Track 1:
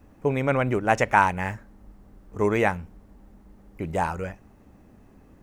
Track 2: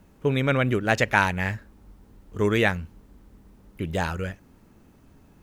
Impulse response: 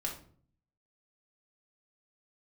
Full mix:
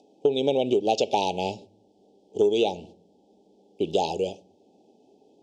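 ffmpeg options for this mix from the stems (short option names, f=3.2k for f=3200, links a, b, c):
-filter_complex "[0:a]highpass=200,bandreject=f=2.8k:w=8.4,acompressor=mode=upward:threshold=-50dB:ratio=2.5,volume=-4.5dB,asplit=2[a][b];[1:a]volume=3dB,asplit=2[c][d];[d]volume=-16.5dB[e];[b]apad=whole_len=239164[f];[c][f]sidechaingate=range=-33dB:threshold=-50dB:ratio=16:detection=peak[g];[2:a]atrim=start_sample=2205[h];[e][h]afir=irnorm=-1:irlink=0[i];[a][g][i]amix=inputs=3:normalize=0,asuperstop=centerf=1500:order=12:qfactor=0.76,highpass=270,equalizer=f=410:t=q:w=4:g=9,equalizer=f=840:t=q:w=4:g=6,equalizer=f=1.2k:t=q:w=4:g=8,equalizer=f=2.2k:t=q:w=4:g=4,equalizer=f=3.4k:t=q:w=4:g=6,equalizer=f=5k:t=q:w=4:g=5,lowpass=f=7.6k:w=0.5412,lowpass=f=7.6k:w=1.3066,acompressor=threshold=-19dB:ratio=5"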